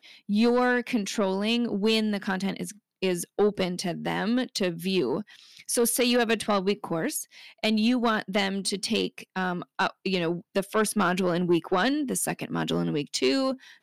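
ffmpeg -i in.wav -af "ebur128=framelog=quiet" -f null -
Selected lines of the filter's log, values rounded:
Integrated loudness:
  I:         -26.5 LUFS
  Threshold: -36.6 LUFS
Loudness range:
  LRA:         1.7 LU
  Threshold: -46.8 LUFS
  LRA low:   -27.6 LUFS
  LRA high:  -25.9 LUFS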